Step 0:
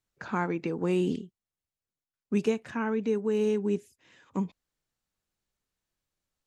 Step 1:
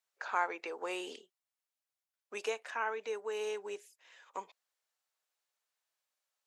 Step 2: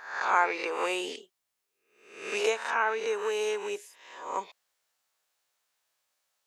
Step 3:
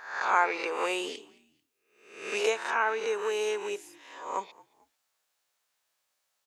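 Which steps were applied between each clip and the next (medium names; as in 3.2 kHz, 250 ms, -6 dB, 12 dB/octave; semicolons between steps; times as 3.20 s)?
high-pass 560 Hz 24 dB/octave
reverse spectral sustain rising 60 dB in 0.65 s; trim +7 dB
frequency-shifting echo 221 ms, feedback 35%, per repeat -63 Hz, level -24 dB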